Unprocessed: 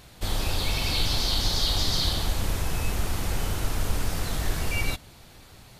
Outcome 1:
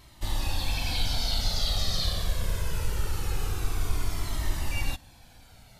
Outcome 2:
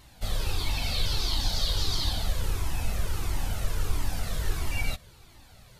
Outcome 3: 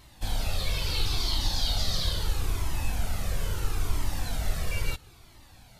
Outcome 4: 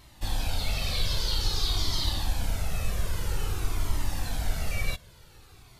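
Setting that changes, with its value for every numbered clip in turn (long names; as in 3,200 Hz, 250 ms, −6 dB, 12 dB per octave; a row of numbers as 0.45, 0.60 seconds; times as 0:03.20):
flanger whose copies keep moving one way, speed: 0.23, 1.5, 0.75, 0.51 Hertz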